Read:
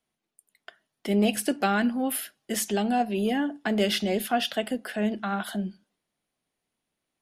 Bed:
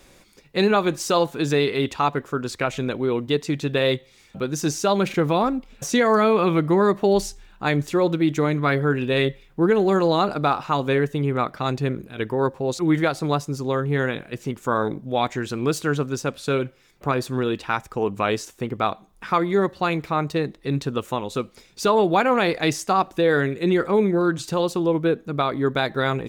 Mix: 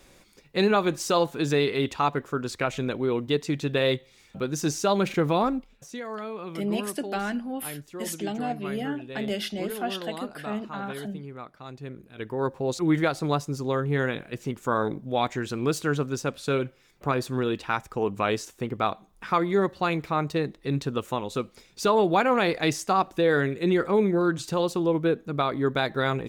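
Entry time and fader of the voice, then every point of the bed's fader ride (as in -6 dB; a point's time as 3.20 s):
5.50 s, -5.5 dB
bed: 5.57 s -3 dB
5.85 s -17.5 dB
11.68 s -17.5 dB
12.59 s -3 dB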